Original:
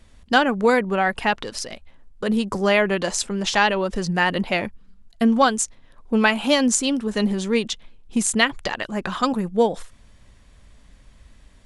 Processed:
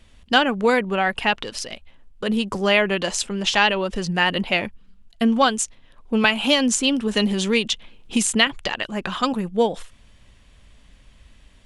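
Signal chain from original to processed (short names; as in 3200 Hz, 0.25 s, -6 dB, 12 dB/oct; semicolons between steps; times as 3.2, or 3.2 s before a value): bell 2900 Hz +7 dB 0.67 oct; 6.24–8.47 three-band squash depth 70%; gain -1 dB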